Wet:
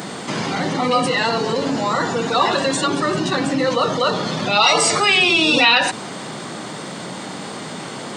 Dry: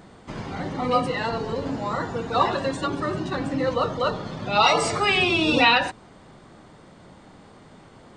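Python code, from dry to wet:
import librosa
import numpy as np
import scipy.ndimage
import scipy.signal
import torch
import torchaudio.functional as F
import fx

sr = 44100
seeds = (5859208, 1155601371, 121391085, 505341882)

y = scipy.signal.sosfilt(scipy.signal.butter(4, 140.0, 'highpass', fs=sr, output='sos'), x)
y = fx.high_shelf(y, sr, hz=2700.0, db=10.5)
y = fx.env_flatten(y, sr, amount_pct=50)
y = y * 10.0 ** (-1.0 / 20.0)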